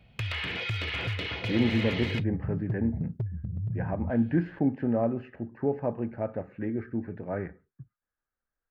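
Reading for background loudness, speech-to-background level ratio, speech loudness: −33.0 LKFS, 2.5 dB, −30.5 LKFS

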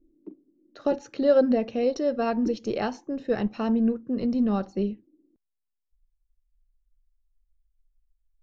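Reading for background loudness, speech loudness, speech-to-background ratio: −42.0 LKFS, −26.0 LKFS, 16.0 dB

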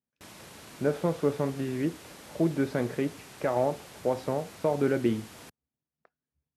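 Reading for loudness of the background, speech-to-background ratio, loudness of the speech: −47.5 LKFS, 17.5 dB, −30.0 LKFS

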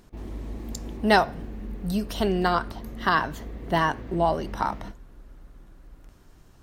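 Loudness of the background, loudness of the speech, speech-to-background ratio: −39.5 LKFS, −25.5 LKFS, 14.0 dB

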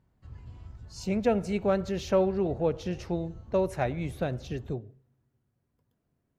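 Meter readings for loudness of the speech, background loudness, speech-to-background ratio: −30.0 LKFS, −47.5 LKFS, 17.5 dB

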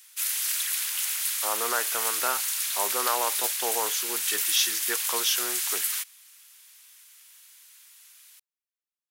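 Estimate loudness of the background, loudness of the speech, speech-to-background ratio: −25.5 LKFS, −30.5 LKFS, −5.0 dB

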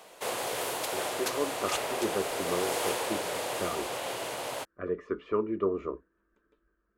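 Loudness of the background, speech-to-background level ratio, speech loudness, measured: −32.5 LKFS, −2.5 dB, −35.0 LKFS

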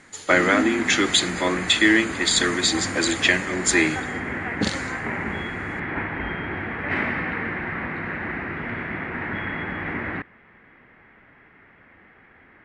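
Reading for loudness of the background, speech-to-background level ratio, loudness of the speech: −28.5 LKFS, 8.0 dB, −20.5 LKFS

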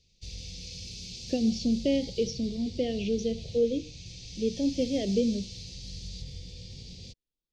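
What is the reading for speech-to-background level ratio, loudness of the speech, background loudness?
12.0 dB, −29.5 LKFS, −41.5 LKFS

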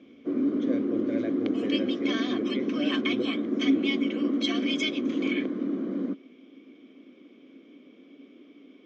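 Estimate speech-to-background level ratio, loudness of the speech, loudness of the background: −5.0 dB, −33.0 LKFS, −28.0 LKFS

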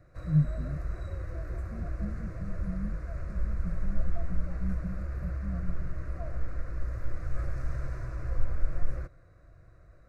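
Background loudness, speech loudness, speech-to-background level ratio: −37.5 LKFS, −36.5 LKFS, 1.0 dB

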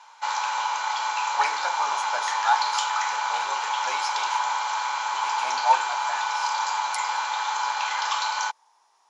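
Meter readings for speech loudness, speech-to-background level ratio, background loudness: −29.5 LKFS, −3.5 dB, −26.0 LKFS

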